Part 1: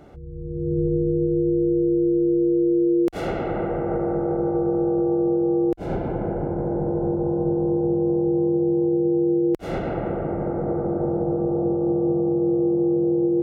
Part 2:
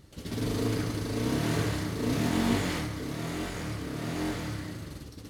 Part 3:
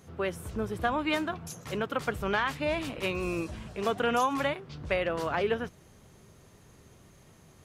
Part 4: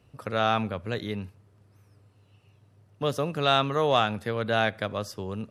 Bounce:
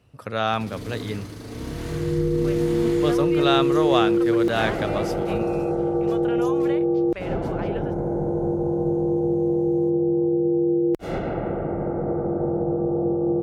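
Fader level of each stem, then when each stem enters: −0.5, −5.0, −7.0, +1.0 decibels; 1.40, 0.35, 2.25, 0.00 seconds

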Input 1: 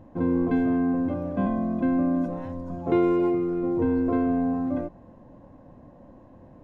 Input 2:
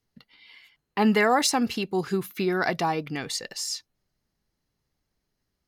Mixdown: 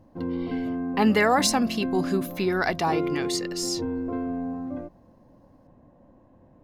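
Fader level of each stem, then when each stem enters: −6.0, +0.5 decibels; 0.00, 0.00 seconds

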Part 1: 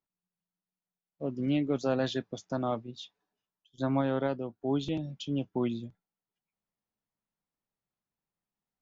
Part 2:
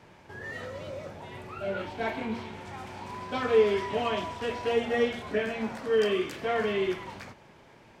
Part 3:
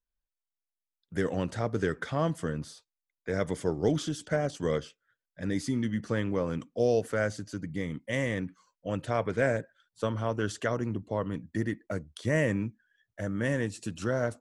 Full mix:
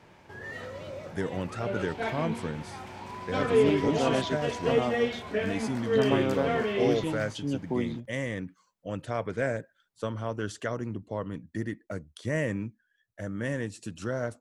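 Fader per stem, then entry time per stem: +0.5, −1.0, −2.5 decibels; 2.15, 0.00, 0.00 seconds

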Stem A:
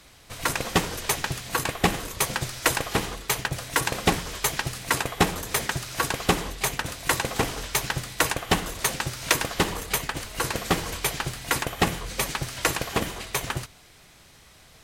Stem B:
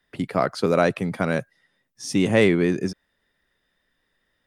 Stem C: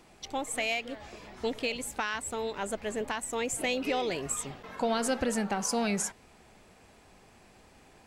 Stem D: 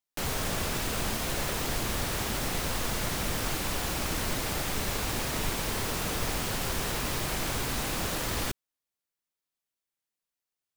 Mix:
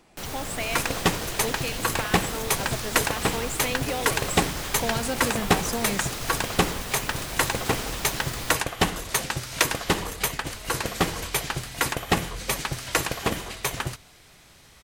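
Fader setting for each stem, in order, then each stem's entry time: 0.0 dB, muted, −0.5 dB, −3.5 dB; 0.30 s, muted, 0.00 s, 0.00 s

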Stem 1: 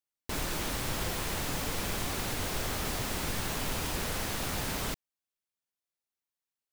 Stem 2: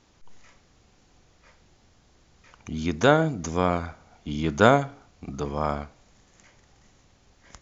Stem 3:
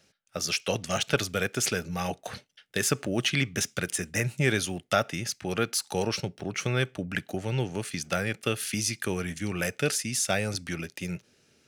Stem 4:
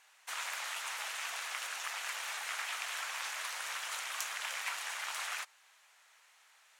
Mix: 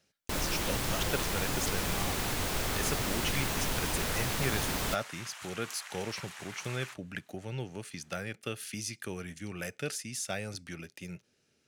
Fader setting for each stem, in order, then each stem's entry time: +1.0 dB, muted, −9.0 dB, −6.5 dB; 0.00 s, muted, 0.00 s, 1.50 s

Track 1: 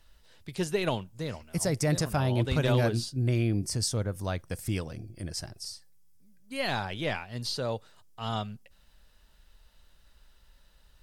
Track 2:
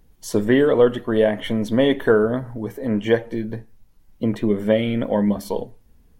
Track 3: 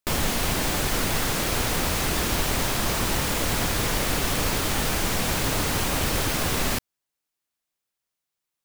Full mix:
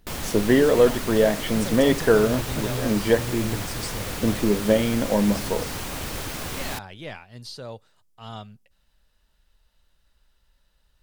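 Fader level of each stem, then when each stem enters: −5.5, −1.5, −7.0 decibels; 0.00, 0.00, 0.00 seconds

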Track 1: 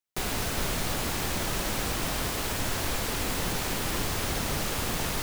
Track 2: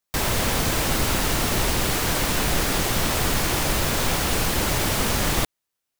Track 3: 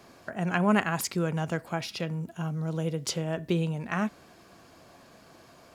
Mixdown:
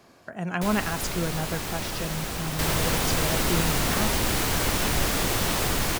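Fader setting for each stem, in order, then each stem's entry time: −2.0, −3.0, −1.5 decibels; 0.45, 2.45, 0.00 seconds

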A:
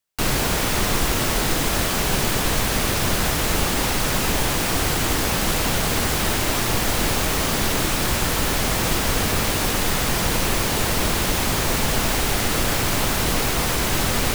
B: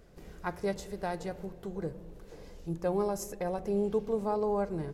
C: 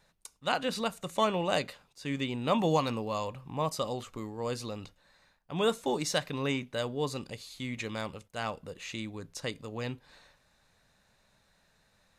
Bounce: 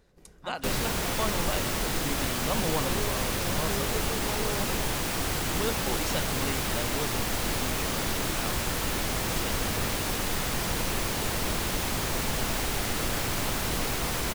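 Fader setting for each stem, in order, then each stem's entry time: −8.0, −7.0, −4.5 decibels; 0.45, 0.00, 0.00 seconds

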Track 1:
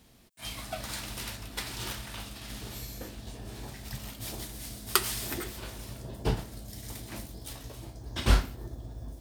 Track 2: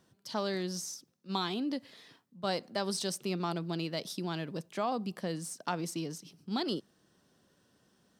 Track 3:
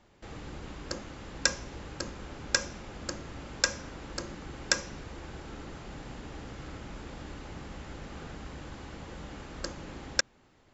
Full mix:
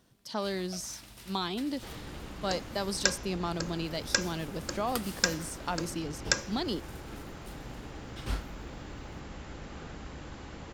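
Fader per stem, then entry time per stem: −12.0, +0.5, −0.5 decibels; 0.00, 0.00, 1.60 seconds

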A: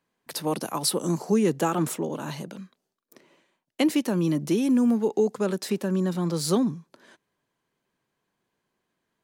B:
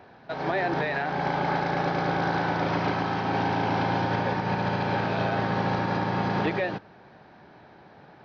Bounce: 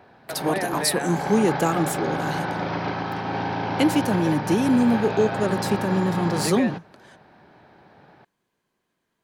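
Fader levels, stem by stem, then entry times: +2.0, −1.0 decibels; 0.00, 0.00 seconds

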